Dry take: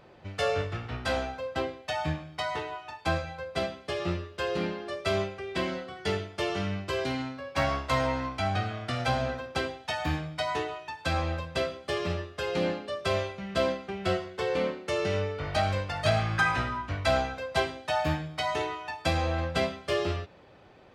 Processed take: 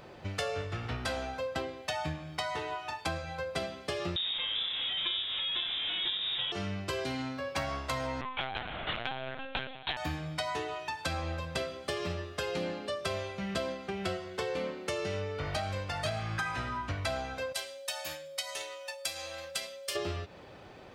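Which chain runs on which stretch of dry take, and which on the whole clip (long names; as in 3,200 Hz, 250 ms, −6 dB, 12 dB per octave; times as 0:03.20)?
0:04.16–0:06.52: linear delta modulator 32 kbit/s, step −26 dBFS + spectral tilt −2 dB per octave + voice inversion scrambler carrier 3,700 Hz
0:08.21–0:09.97: spectral tilt +3 dB per octave + linear-prediction vocoder at 8 kHz pitch kept
0:17.52–0:19.95: first-order pre-emphasis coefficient 0.97 + transient designer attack +4 dB, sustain −3 dB + steady tone 550 Hz −47 dBFS
whole clip: high-shelf EQ 5,700 Hz +7 dB; downward compressor 6 to 1, threshold −36 dBFS; level +4 dB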